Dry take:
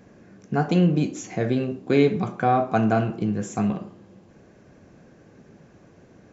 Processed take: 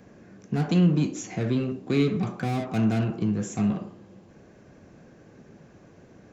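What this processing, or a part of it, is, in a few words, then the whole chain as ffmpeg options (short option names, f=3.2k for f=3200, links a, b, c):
one-band saturation: -filter_complex "[0:a]acrossover=split=330|2300[a][b][c];[b]asoftclip=type=tanh:threshold=-34.5dB[d];[a][d][c]amix=inputs=3:normalize=0"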